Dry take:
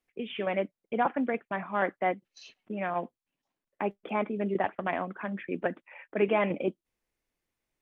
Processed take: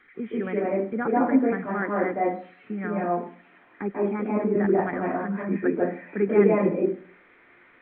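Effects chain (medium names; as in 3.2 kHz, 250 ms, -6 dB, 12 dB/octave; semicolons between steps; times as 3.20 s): zero-crossing glitches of -31 dBFS; Gaussian low-pass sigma 5.2 samples; reverberation RT60 0.45 s, pre-delay 140 ms, DRR -0.5 dB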